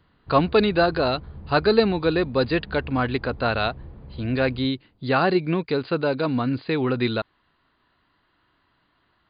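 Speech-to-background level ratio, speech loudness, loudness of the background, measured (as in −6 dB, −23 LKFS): 19.0 dB, −23.0 LKFS, −42.0 LKFS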